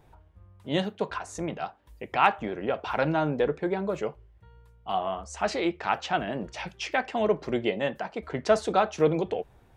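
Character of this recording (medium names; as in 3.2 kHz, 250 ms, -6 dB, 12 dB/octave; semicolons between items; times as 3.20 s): noise floor -58 dBFS; spectral tilt -4.0 dB/octave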